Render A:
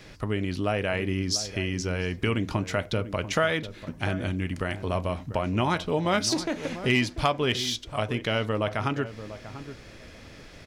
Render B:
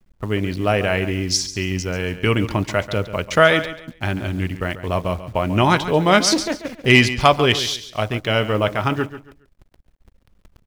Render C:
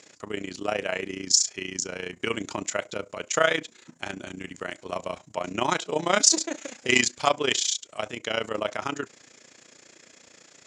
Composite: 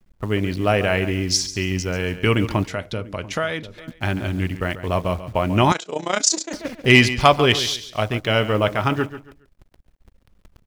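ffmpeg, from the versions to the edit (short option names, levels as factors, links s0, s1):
-filter_complex "[1:a]asplit=3[s0][s1][s2];[s0]atrim=end=2.682[s3];[0:a]atrim=start=2.678:end=3.782[s4];[s1]atrim=start=3.778:end=5.722[s5];[2:a]atrim=start=5.718:end=6.532[s6];[s2]atrim=start=6.528[s7];[s3][s4]acrossfade=d=0.004:c1=hsin:c2=hsin[s8];[s8][s5]acrossfade=d=0.004:c1=hsin:c2=hsin[s9];[s9][s6]acrossfade=d=0.004:c1=hsin:c2=hsin[s10];[s10][s7]acrossfade=d=0.004:c1=hsin:c2=hsin"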